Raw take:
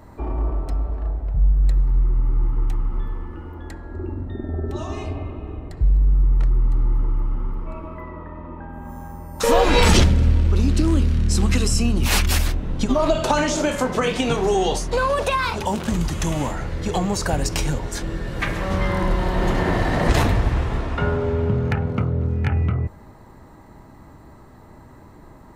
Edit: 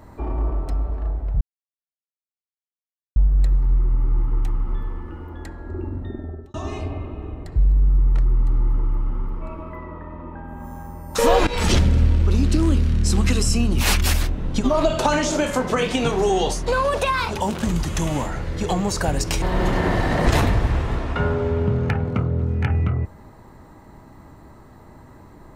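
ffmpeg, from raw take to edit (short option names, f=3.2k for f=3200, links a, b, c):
-filter_complex "[0:a]asplit=5[a][b][c][d][e];[a]atrim=end=1.41,asetpts=PTS-STARTPTS,afade=t=out:st=1.406:d=0.004:c=hsin,apad=pad_dur=1.75[f];[b]atrim=start=1.41:end=4.79,asetpts=PTS-STARTPTS,afade=t=in:d=0.004:c=hsin,afade=t=out:st=2.89:d=0.49[g];[c]atrim=start=4.79:end=9.72,asetpts=PTS-STARTPTS,afade=t=in:d=0.004:c=hsin,afade=t=out:st=4.926:d=0.004:c=hsin:silence=0.141254[h];[d]atrim=start=9.72:end=17.672,asetpts=PTS-STARTPTS,afade=t=in:d=0.41:silence=0.141254[i];[e]atrim=start=19.238[j];[f][g][h][i]concat=n=4:v=0:a=1[k];[k][j]acrossfade=d=0.004:c1=hsin:c2=hsin"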